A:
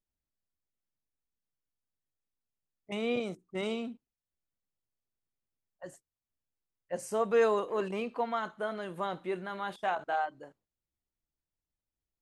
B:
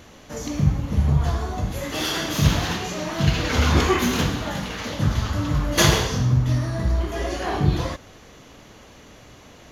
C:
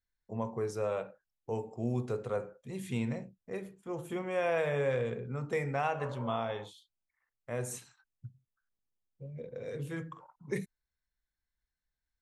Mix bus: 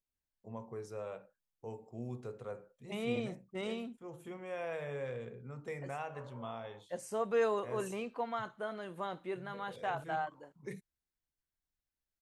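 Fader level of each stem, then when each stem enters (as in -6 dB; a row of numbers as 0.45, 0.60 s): -5.0 dB, off, -9.5 dB; 0.00 s, off, 0.15 s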